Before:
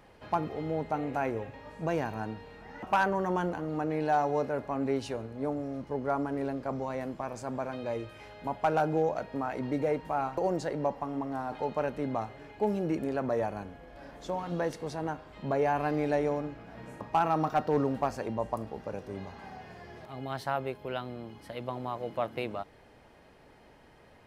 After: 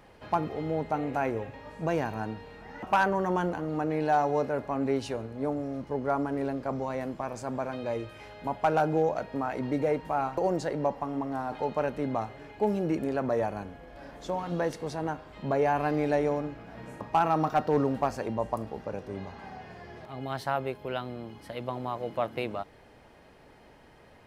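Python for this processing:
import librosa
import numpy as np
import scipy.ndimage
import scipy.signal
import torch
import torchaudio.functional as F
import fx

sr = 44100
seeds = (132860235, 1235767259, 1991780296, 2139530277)

y = fx.high_shelf(x, sr, hz=7100.0, db=-5.5, at=(18.83, 20.21))
y = y * librosa.db_to_amplitude(2.0)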